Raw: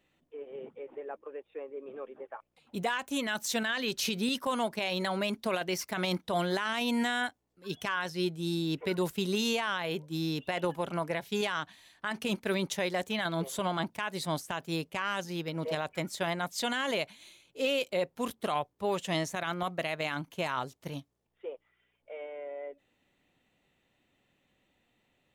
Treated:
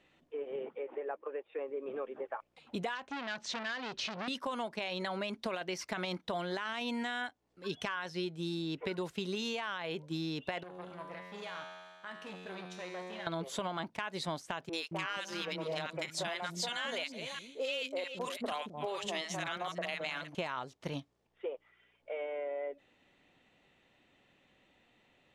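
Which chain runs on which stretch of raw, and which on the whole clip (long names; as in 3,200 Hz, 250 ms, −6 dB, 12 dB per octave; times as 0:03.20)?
0:00.62–0:01.59: low-pass filter 9,000 Hz + bass and treble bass −10 dB, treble −10 dB + one half of a high-frequency compander encoder only
0:02.95–0:04.28: high-frequency loss of the air 130 metres + saturating transformer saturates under 2,300 Hz
0:10.63–0:13.27: tuned comb filter 91 Hz, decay 1.8 s, mix 90% + saturating transformer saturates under 1,200 Hz
0:14.69–0:20.35: delay that plays each chunk backwards 266 ms, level −14 dB + spectral tilt +1.5 dB per octave + three-band delay without the direct sound mids, highs, lows 40/220 ms, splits 300/1,100 Hz
whole clip: Bessel low-pass filter 5,100 Hz, order 2; low-shelf EQ 250 Hz −5.5 dB; downward compressor 6 to 1, threshold −41 dBFS; level +6.5 dB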